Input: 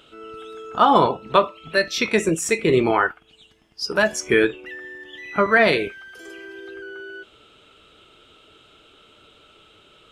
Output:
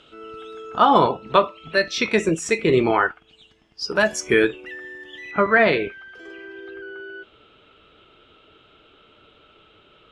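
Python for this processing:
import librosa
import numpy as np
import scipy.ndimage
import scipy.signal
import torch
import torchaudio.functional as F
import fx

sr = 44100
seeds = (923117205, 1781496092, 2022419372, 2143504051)

y = fx.lowpass(x, sr, hz=fx.steps((0.0, 6500.0), (4.0, 11000.0), (5.31, 3100.0)), slope=12)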